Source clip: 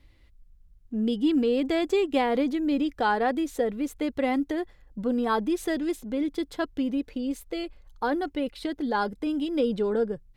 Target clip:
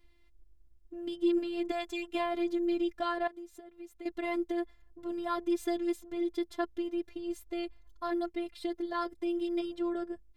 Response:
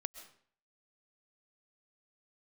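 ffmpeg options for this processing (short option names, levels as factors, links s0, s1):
-filter_complex "[0:a]asettb=1/sr,asplit=3[s0][s1][s2];[s0]atrim=end=1.714[s3];[s1]atrim=start=1.71:end=2.15,asetpts=PTS-STARTPTS,afade=t=in:d=0.004:c=qsin,afade=t=out:st=0.436:d=0.004:c=qsin,equalizer=f=330:t=o:w=0.88:g=-14.5[s4];[s2]atrim=start=2.146[s5];[s3][s4]acrossfade=d=0.004:c1=hsin:c2=qsin[s6];[s6][s5]acrossfade=d=0.004:c1=qsin:c2=hsin,asettb=1/sr,asplit=3[s7][s8][s9];[s7]atrim=end=3.274[s10];[s8]atrim=start=3.27:end=4.06,asetpts=PTS-STARTPTS,afade=t=in:d=0.004:c=qsin,afade=t=out:st=0.786:d=0.004:c=qsin,acompressor=threshold=0.01:ratio=5[s11];[s9]atrim=start=4.056[s12];[s10][s11]acrossfade=d=0.004:c1=hsin:c2=qsin[s13];[s13][s12]acrossfade=d=0.004:c1=qsin:c2=hsin,afftfilt=real='hypot(re,im)*cos(PI*b)':imag='0':win_size=512:overlap=0.75,volume=0.708"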